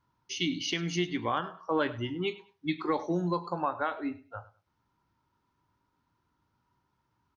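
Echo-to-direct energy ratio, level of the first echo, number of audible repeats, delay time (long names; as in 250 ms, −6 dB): −18.0 dB, −18.0 dB, 2, 101 ms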